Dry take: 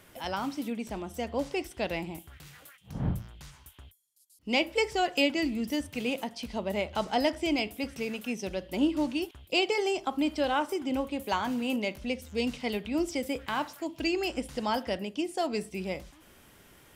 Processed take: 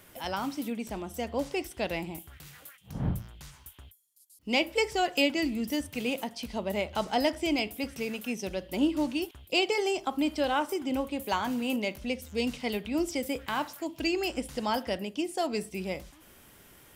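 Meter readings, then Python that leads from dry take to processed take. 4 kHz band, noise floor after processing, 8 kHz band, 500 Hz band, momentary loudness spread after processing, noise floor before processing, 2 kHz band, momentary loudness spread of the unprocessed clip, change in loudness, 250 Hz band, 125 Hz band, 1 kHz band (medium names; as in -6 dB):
+0.5 dB, -56 dBFS, +2.5 dB, 0.0 dB, 10 LU, -58 dBFS, 0.0 dB, 9 LU, 0.0 dB, 0.0 dB, 0.0 dB, 0.0 dB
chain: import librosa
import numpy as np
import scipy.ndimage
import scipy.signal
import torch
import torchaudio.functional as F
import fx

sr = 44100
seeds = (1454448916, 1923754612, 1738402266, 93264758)

y = fx.high_shelf(x, sr, hz=11000.0, db=8.5)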